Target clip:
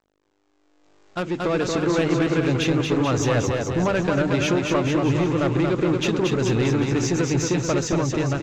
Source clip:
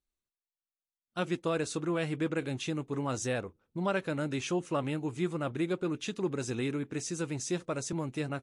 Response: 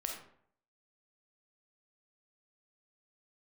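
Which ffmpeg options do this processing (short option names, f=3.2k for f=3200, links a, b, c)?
-filter_complex "[0:a]acompressor=threshold=-33dB:ratio=5,highshelf=f=4k:g=-11.5,aeval=exprs='val(0)+0.000631*(sin(2*PI*50*n/s)+sin(2*PI*2*50*n/s)/2+sin(2*PI*3*50*n/s)/3+sin(2*PI*4*50*n/s)/4+sin(2*PI*5*50*n/s)/5)':c=same,asubboost=boost=4:cutoff=89,aresample=16000,aeval=exprs='val(0)*gte(abs(val(0)),0.001)':c=same,aresample=44100,bandreject=f=50:t=h:w=6,bandreject=f=100:t=h:w=6,bandreject=f=150:t=h:w=6,bandreject=f=200:t=h:w=6,bandreject=f=250:t=h:w=6,asoftclip=type=tanh:threshold=-35.5dB,asplit=2[a][b];[b]aecho=0:1:230|437|623.3|791|941.9:0.631|0.398|0.251|0.158|0.1[c];[a][c]amix=inputs=2:normalize=0,dynaudnorm=f=200:g=11:m=16.5dB,volume=2.5dB" -ar 48000 -c:a libmp3lame -b:a 320k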